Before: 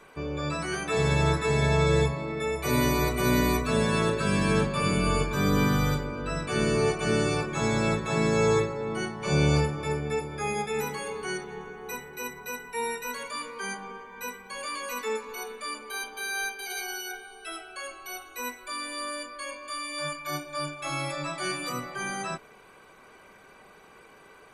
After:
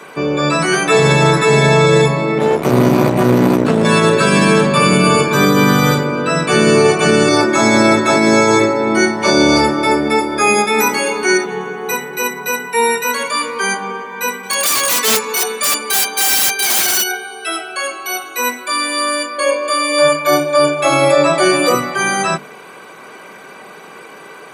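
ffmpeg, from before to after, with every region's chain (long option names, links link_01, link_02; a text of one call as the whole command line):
ffmpeg -i in.wav -filter_complex "[0:a]asettb=1/sr,asplit=3[link_01][link_02][link_03];[link_01]atrim=end=2.384[link_04];[link_02]atrim=start=2.38:end=3.85,asetpts=PTS-STARTPTS,afade=type=in:duration=0.004:curve=qsin,afade=type=out:start_time=1.466:duration=0.004:curve=qsin,tiltshelf=frequency=790:gain=9,aeval=exprs='max(val(0),0)':channel_layout=same[link_05];[link_03]atrim=start=3.846[link_06];[link_04][link_05]acrossfade=duration=0.004:curve1=hsin:curve2=qsin[link_07];[link_07][link_06]acrossfade=duration=0.004:curve1=qsin:curve2=hsin,asettb=1/sr,asplit=3[link_08][link_09][link_10];[link_08]atrim=end=7.284[link_11];[link_09]atrim=start=7.28:end=11.46,asetpts=PTS-STARTPTS,afade=type=in:duration=0.004:curve=qsin,afade=type=out:start_time=4.176:duration=0.004:curve=qsin,equalizer=frequency=77:width=1.6:gain=5.5,aecho=1:1:3.2:0.84,atrim=end_sample=184338[link_12];[link_10]atrim=start=11.456[link_13];[link_11][link_12]acrossfade=duration=0.004:curve1=hsin:curve2=qsin[link_14];[link_14][link_13]acrossfade=duration=0.004:curve1=qsin:curve2=hsin,asettb=1/sr,asplit=3[link_15][link_16][link_17];[link_15]atrim=end=14.434[link_18];[link_16]atrim=start=14.43:end=17.04,asetpts=PTS-STARTPTS,afade=type=in:duration=0.004:curve=qsin,afade=type=out:start_time=2.606:duration=0.004:curve=qsin,equalizer=frequency=7900:width_type=o:width=2.1:gain=9.5,aeval=exprs='(mod(17.8*val(0)+1,2)-1)/17.8':channel_layout=same[link_19];[link_17]atrim=start=17.036[link_20];[link_18][link_19]acrossfade=duration=0.004:curve1=hsin:curve2=qsin[link_21];[link_21][link_20]acrossfade=duration=0.004:curve1=qsin:curve2=hsin,asettb=1/sr,asplit=3[link_22][link_23][link_24];[link_22]atrim=end=19.384[link_25];[link_23]atrim=start=19.38:end=21.75,asetpts=PTS-STARTPTS,afade=type=in:duration=0.004:curve=qsin,afade=type=out:start_time=2.366:duration=0.004:curve=qsin,equalizer=frequency=490:width=1.3:gain=12,bandreject=frequency=5400:width=16[link_26];[link_24]atrim=start=21.746[link_27];[link_25][link_26]acrossfade=duration=0.004:curve1=hsin:curve2=qsin[link_28];[link_28][link_27]acrossfade=duration=0.004:curve1=qsin:curve2=hsin,highpass=frequency=140:width=0.5412,highpass=frequency=140:width=1.3066,bandreject=frequency=50:width_type=h:width=6,bandreject=frequency=100:width_type=h:width=6,bandreject=frequency=150:width_type=h:width=6,bandreject=frequency=200:width_type=h:width=6,bandreject=frequency=250:width_type=h:width=6,alimiter=level_in=18dB:limit=-1dB:release=50:level=0:latency=1,volume=-1dB" out.wav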